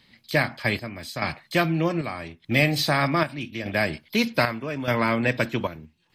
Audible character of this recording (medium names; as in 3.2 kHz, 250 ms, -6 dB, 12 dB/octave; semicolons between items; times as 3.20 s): chopped level 0.82 Hz, depth 60%, duty 65%